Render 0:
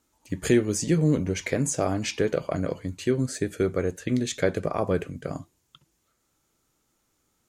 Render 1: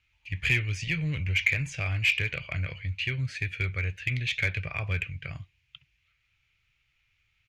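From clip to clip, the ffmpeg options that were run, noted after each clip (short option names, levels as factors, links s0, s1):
-filter_complex "[0:a]firequalizer=gain_entry='entry(110,0);entry(220,-27);entry(650,-20);entry(1100,-15);entry(2400,12);entry(3600,-3);entry(7900,-26)':delay=0.05:min_phase=1,asplit=2[s0][s1];[s1]volume=22.4,asoftclip=hard,volume=0.0447,volume=0.631[s2];[s0][s2]amix=inputs=2:normalize=0"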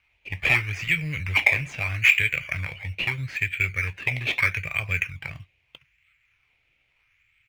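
-filter_complex "[0:a]asplit=2[s0][s1];[s1]acrusher=samples=12:mix=1:aa=0.000001:lfo=1:lforange=7.2:lforate=0.78,volume=0.631[s2];[s0][s2]amix=inputs=2:normalize=0,equalizer=f=2200:t=o:w=1.2:g=12.5,volume=0.531"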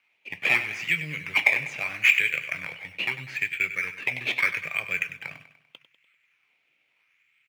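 -filter_complex "[0:a]highpass=f=180:w=0.5412,highpass=f=180:w=1.3066,asplit=2[s0][s1];[s1]aecho=0:1:98|196|294|392|490:0.224|0.11|0.0538|0.0263|0.0129[s2];[s0][s2]amix=inputs=2:normalize=0,volume=0.841"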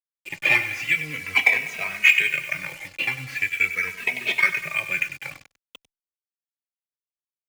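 -filter_complex "[0:a]acrusher=bits=6:mix=0:aa=0.5,asplit=2[s0][s1];[s1]adelay=2.8,afreqshift=-0.44[s2];[s0][s2]amix=inputs=2:normalize=1,volume=2"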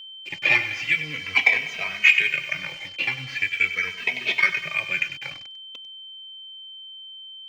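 -af "highshelf=f=7400:t=q:w=1.5:g=-12.5,aeval=exprs='val(0)+0.0141*sin(2*PI*3100*n/s)':c=same,volume=0.891"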